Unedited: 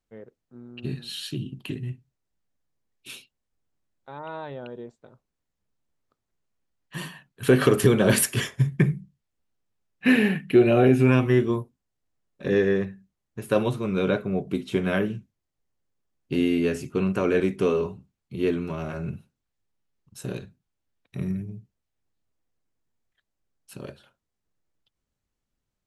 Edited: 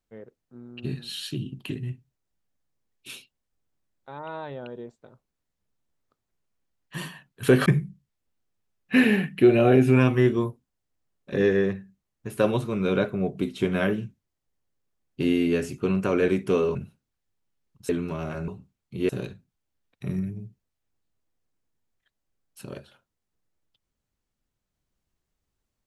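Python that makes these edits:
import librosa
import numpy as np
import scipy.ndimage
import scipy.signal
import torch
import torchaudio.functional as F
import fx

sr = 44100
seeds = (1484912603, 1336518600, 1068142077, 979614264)

y = fx.edit(x, sr, fx.cut(start_s=7.66, length_s=1.12),
    fx.swap(start_s=17.87, length_s=0.61, other_s=19.07, other_length_s=1.14), tone=tone)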